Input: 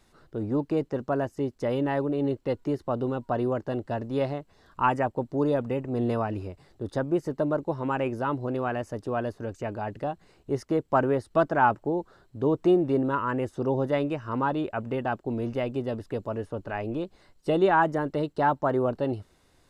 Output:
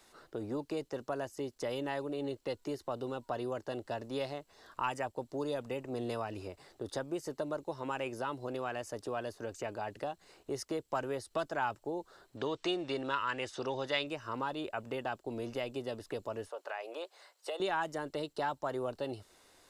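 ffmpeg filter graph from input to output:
ffmpeg -i in.wav -filter_complex "[0:a]asettb=1/sr,asplit=3[link_01][link_02][link_03];[link_01]atrim=end=12.374[link_04];[link_02]atrim=start=12.37:end=14.07,asetpts=PTS-STARTPTS,afade=type=in:duration=0.004:curve=qsin,afade=type=out:start_time=1.696:duration=0.004:curve=qsin,lowpass=4100,acontrast=37,tiltshelf=frequency=1100:gain=-7.5[link_05];[link_03]atrim=start=14.066[link_06];[link_04][link_05]acrossfade=duration=0.004:curve1=hsin:curve2=qsin[link_07];[link_07][link_06]acrossfade=duration=0.004:curve1=qsin:curve2=hsin,asettb=1/sr,asplit=3[link_08][link_09][link_10];[link_08]atrim=end=16.484[link_11];[link_09]atrim=start=16.48:end=17.6,asetpts=PTS-STARTPTS,afade=type=in:duration=0.004:curve=qsin,afade=type=out:start_time=1.116:duration=0.004:curve=qsin,highpass=frequency=510:width=0.5412,highpass=frequency=510:width=1.3066,acompressor=threshold=-35dB:ratio=2:attack=3.2:release=140:knee=1:detection=peak[link_12];[link_10]atrim=start=17.596[link_13];[link_11][link_12]acrossfade=duration=0.004:curve1=hsin:curve2=qsin[link_14];[link_14][link_13]acrossfade=duration=0.004:curve1=qsin:curve2=hsin,bass=frequency=250:gain=-14,treble=frequency=4000:gain=3,acrossover=split=120|3000[link_15][link_16][link_17];[link_16]acompressor=threshold=-42dB:ratio=2.5[link_18];[link_15][link_18][link_17]amix=inputs=3:normalize=0,volume=2.5dB" out.wav

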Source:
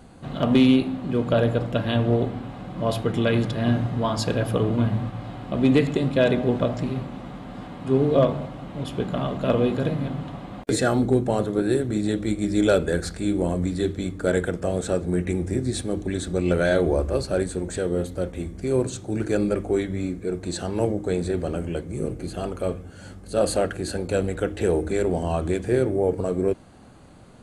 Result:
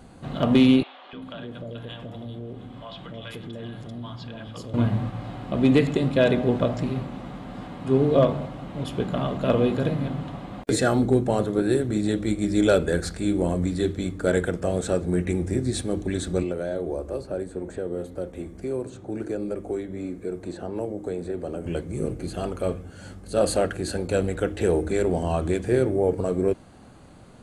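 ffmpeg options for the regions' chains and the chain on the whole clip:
ffmpeg -i in.wav -filter_complex "[0:a]asettb=1/sr,asplit=3[link_01][link_02][link_03];[link_01]atrim=end=0.834[link_04];[link_02]atrim=start=0.83:end=4.74,asetpts=PTS-STARTPTS,afade=type=in:duration=0.004:curve=qsin,afade=type=out:start_time=3.906:duration=0.004:curve=qsin,equalizer=frequency=3300:width=4.5:gain=9.5,acrossover=split=650|4400[link_05][link_06][link_07];[link_05]adelay=300[link_08];[link_07]adelay=390[link_09];[link_08][link_06][link_09]amix=inputs=3:normalize=0,atrim=end_sample=172431,acompressor=threshold=-40dB:ratio=2.5:attack=3.2:release=140:knee=1:detection=peak[link_10];[link_03]atrim=start=4.736[link_11];[link_04][link_10]acrossfade=duration=0.004:curve1=hsin:curve2=qsin[link_12];[link_12][link_11]acrossfade=duration=0.004:curve1=qsin:curve2=hsin,asettb=1/sr,asplit=3[link_13][link_14][link_15];[link_13]atrim=end=16.434[link_16];[link_14]atrim=start=16.43:end=21.66,asetpts=PTS-STARTPTS,afade=type=in:duration=0.004:curve=qsin,afade=type=out:start_time=5.226:duration=0.004:curve=qsin,acrossover=split=250|870|2900[link_17][link_18][link_19][link_20];[link_17]acompressor=threshold=-42dB:ratio=3[link_21];[link_18]acompressor=threshold=-28dB:ratio=3[link_22];[link_19]acompressor=threshold=-49dB:ratio=3[link_23];[link_20]acompressor=threshold=-55dB:ratio=3[link_24];[link_21][link_22][link_23][link_24]amix=inputs=4:normalize=0,equalizer=frequency=3900:width=0.42:gain=-4[link_25];[link_15]atrim=start=21.656[link_26];[link_16][link_25]acrossfade=duration=0.004:curve1=hsin:curve2=qsin[link_27];[link_27][link_26]acrossfade=duration=0.004:curve1=qsin:curve2=hsin" out.wav

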